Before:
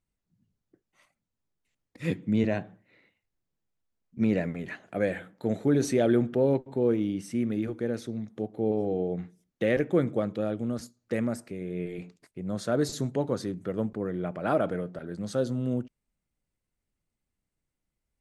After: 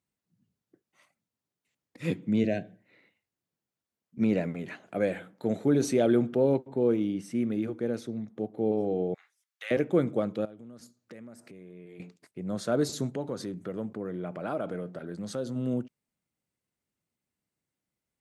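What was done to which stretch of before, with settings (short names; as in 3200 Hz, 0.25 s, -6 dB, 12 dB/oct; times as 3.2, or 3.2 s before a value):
2.4–2.8 spectral gain 750–1500 Hz -17 dB
6.68–8.58 mismatched tape noise reduction decoder only
9.14–9.71 HPF 1100 Hz 24 dB/oct
10.45–12 compressor 4:1, threshold -46 dBFS
13.13–15.56 compressor 2:1, threshold -32 dBFS
whole clip: HPF 120 Hz; dynamic EQ 1800 Hz, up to -6 dB, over -56 dBFS, Q 5.5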